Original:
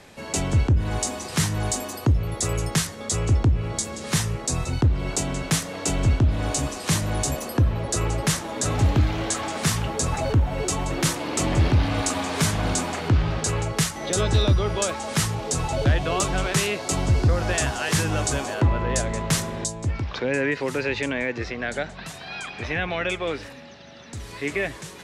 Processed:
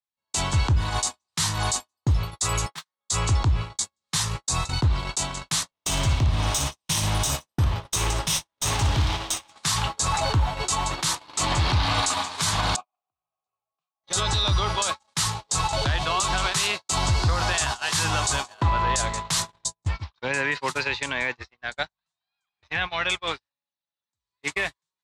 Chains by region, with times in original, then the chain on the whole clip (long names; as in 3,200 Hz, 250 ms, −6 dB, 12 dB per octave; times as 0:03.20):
0:02.66–0:03.09: phase distortion by the signal itself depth 0.062 ms + high-pass filter 120 Hz 24 dB per octave + bass and treble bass −12 dB, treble −10 dB
0:05.71–0:09.52: lower of the sound and its delayed copy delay 0.33 ms + flutter between parallel walls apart 9.9 metres, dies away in 0.36 s + one half of a high-frequency compander decoder only
0:12.76–0:14.04: formant filter a + low-shelf EQ 470 Hz +9.5 dB
whole clip: noise gate −25 dBFS, range −57 dB; graphic EQ with 10 bands 250 Hz −6 dB, 500 Hz −6 dB, 1,000 Hz +11 dB, 4,000 Hz +11 dB, 8,000 Hz +7 dB; brickwall limiter −14 dBFS